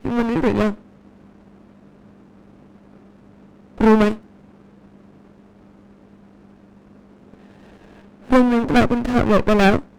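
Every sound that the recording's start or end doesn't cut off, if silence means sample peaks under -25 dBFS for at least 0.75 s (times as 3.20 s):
3.80–4.14 s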